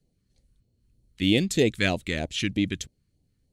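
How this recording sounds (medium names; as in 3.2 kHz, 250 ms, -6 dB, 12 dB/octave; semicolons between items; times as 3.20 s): phasing stages 2, 3.2 Hz, lowest notch 650–1300 Hz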